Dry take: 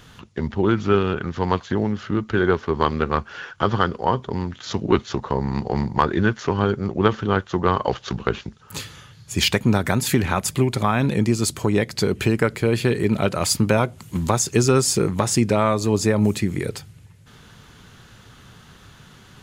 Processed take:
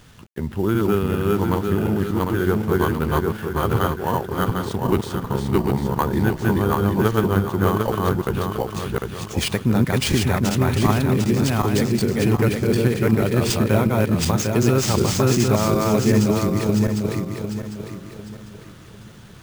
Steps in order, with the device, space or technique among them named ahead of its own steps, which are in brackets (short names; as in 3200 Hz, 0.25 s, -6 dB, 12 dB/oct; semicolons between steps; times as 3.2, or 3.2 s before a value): regenerating reverse delay 0.375 s, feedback 59%, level 0 dB; early 8-bit sampler (sample-rate reducer 13000 Hz, jitter 0%; bit-crush 8-bit); low shelf 370 Hz +5.5 dB; gain -5.5 dB